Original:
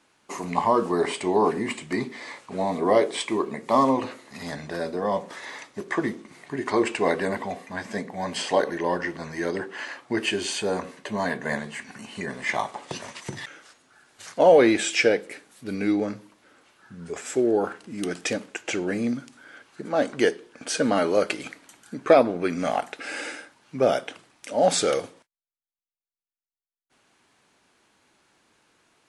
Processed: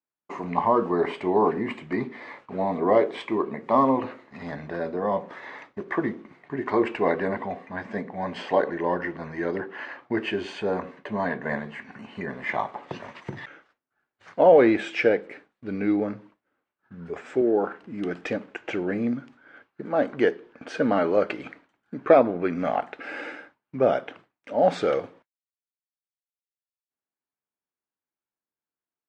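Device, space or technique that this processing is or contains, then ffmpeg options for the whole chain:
hearing-loss simulation: -filter_complex "[0:a]lowpass=2.1k,agate=range=-33dB:threshold=-45dB:ratio=3:detection=peak,asettb=1/sr,asplit=3[a][b][c];[a]atrim=end=17.414[d];[b]atrim=start=17.41:end=17.82,asetpts=PTS-STARTPTS,afade=t=in:d=0.004:c=qsin,afade=t=out:st=0.406:d=0.004:c=qsin,highpass=150[e];[c]atrim=start=17.816[f];[d][e]acrossfade=d=0.004:c1=hsin:c2=qsin[g];[g][f]acrossfade=d=0.004:c1=qsin:c2=hsin"

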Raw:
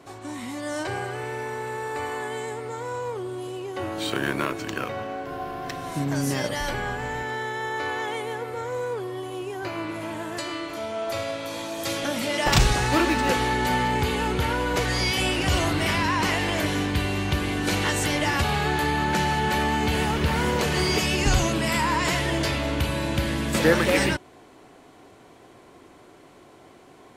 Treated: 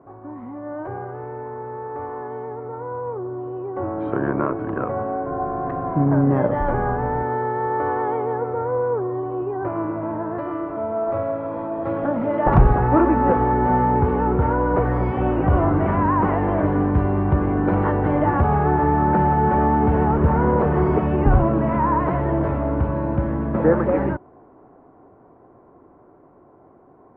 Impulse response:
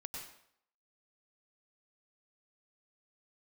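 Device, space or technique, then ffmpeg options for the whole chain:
action camera in a waterproof case: -af "lowpass=f=1.2k:w=0.5412,lowpass=f=1.2k:w=1.3066,dynaudnorm=f=420:g=21:m=11dB" -ar 44100 -c:a aac -b:a 128k

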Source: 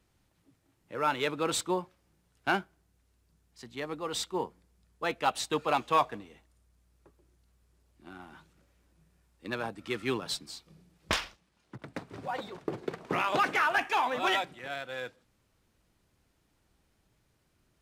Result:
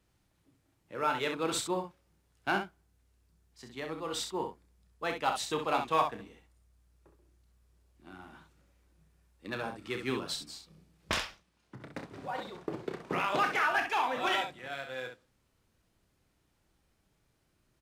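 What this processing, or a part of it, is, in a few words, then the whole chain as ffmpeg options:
slapback doubling: -filter_complex "[0:a]asplit=3[a][b][c];[b]adelay=31,volume=-8.5dB[d];[c]adelay=65,volume=-7dB[e];[a][d][e]amix=inputs=3:normalize=0,volume=-3dB"

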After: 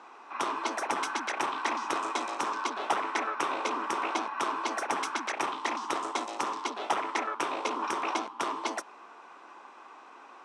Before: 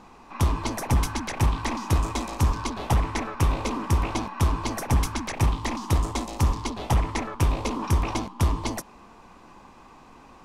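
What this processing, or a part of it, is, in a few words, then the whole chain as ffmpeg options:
phone speaker on a table: -af "highpass=f=360:w=0.5412,highpass=f=360:w=1.3066,equalizer=f=500:t=q:w=4:g=-4,equalizer=f=1.4k:t=q:w=4:g=7,equalizer=f=4.6k:t=q:w=4:g=-6,equalizer=f=6.9k:t=q:w=4:g=-6,lowpass=f=8.1k:w=0.5412,lowpass=f=8.1k:w=1.3066"

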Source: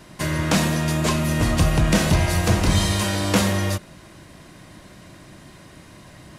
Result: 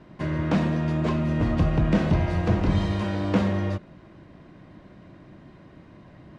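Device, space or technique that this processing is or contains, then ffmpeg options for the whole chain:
phone in a pocket: -af "lowpass=3.7k,equalizer=f=260:t=o:w=2.1:g=4,highshelf=f=2.1k:g=-9,volume=-5dB"

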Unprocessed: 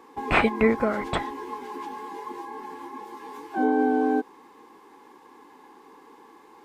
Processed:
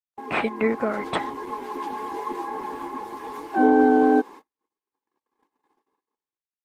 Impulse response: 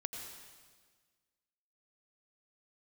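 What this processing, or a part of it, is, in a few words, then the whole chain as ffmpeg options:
video call: -af "highpass=170,dynaudnorm=f=340:g=5:m=11dB,agate=range=-52dB:threshold=-35dB:ratio=16:detection=peak,volume=-3.5dB" -ar 48000 -c:a libopus -b:a 20k

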